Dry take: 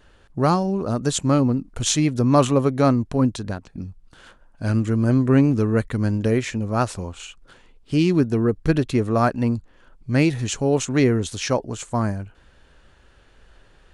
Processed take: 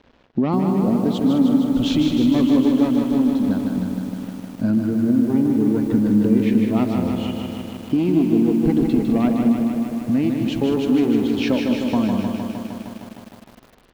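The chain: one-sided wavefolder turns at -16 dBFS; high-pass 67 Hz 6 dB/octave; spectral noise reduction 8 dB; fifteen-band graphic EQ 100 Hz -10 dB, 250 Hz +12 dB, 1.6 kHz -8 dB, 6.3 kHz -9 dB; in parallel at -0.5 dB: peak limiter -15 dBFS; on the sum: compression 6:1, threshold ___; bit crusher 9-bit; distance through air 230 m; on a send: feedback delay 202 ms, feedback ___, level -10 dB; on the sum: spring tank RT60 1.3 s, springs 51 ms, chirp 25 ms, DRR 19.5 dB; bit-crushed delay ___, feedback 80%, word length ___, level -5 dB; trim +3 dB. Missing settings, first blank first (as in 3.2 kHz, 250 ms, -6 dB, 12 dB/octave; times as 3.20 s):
-20 dBFS, 34%, 154 ms, 8-bit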